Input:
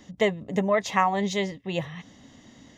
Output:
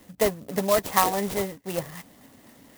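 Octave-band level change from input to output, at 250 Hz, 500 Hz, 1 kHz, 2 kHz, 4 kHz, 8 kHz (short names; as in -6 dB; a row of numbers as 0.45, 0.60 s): -2.5, +1.0, 0.0, -3.0, +0.5, +9.0 dB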